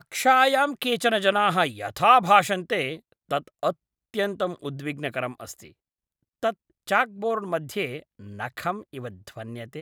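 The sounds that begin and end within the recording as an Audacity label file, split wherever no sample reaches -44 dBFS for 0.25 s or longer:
4.140000	5.700000	sound
6.430000	6.540000	sound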